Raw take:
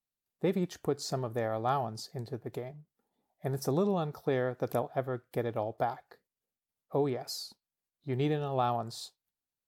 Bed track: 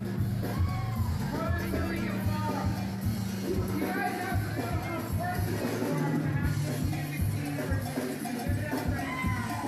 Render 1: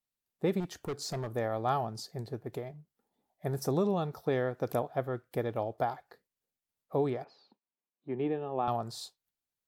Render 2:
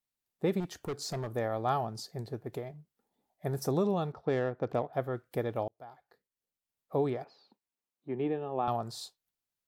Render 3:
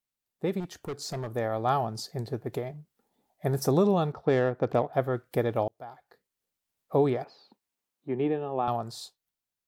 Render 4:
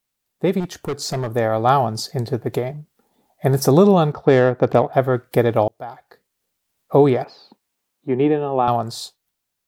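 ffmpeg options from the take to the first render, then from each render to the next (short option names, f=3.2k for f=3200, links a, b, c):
-filter_complex "[0:a]asettb=1/sr,asplit=3[a][b][c];[a]atrim=end=0.604[d];[b]atrim=start=0.6:end=1.32,asetpts=PTS-STARTPTS,afade=t=in:d=0.004:c=qsin,afade=t=out:st=0.716:d=0.004:c=qsin,asoftclip=type=hard:threshold=-31.5dB[e];[c]atrim=start=1.316[f];[d][e]acrossfade=d=0.004:c1=hsin:c2=qsin[g];[g][f]acrossfade=d=0.004:c1=qsin:c2=hsin,asettb=1/sr,asplit=3[h][i][j];[h]atrim=end=7.244[k];[i]atrim=start=7.24:end=8.68,asetpts=PTS-STARTPTS,afade=t=in:d=0.004:c=qsin,afade=t=out:st=1.436:d=0.004:c=qsin,highpass=f=160:w=0.5412,highpass=f=160:w=1.3066,equalizer=f=160:t=q:w=4:g=-7,equalizer=f=650:t=q:w=4:g=-4,equalizer=f=1.4k:t=q:w=4:g=-8,equalizer=f=2k:t=q:w=4:g=-6,lowpass=f=2.4k:w=0.5412,lowpass=f=2.4k:w=1.3066[l];[j]atrim=start=8.676[m];[k][l]acrossfade=d=0.004:c1=hsin:c2=qsin[n];[n][m]acrossfade=d=0.004:c1=qsin:c2=hsin"
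-filter_complex "[0:a]asettb=1/sr,asplit=3[a][b][c];[a]atrim=end=4.124[d];[b]atrim=start=4.12:end=4.93,asetpts=PTS-STARTPTS,afade=t=in:d=0.004:c=qsin,afade=t=out:st=0.806:d=0.004:c=qsin,adynamicsmooth=sensitivity=5:basefreq=2.1k[e];[c]atrim=start=4.926[f];[d][e]acrossfade=d=0.004:c1=hsin:c2=qsin[g];[g][f]acrossfade=d=0.004:c1=qsin:c2=hsin,asplit=2[h][i];[h]atrim=end=5.68,asetpts=PTS-STARTPTS,afade=t=out:st=5.676:d=0.004:c=hsin[j];[i]atrim=start=5.68,asetpts=PTS-STARTPTS,afade=t=in:d=1.28[k];[j][k]concat=n=2:v=0:a=1"
-af "dynaudnorm=f=290:g=11:m=6dB"
-af "volume=10.5dB,alimiter=limit=-2dB:level=0:latency=1"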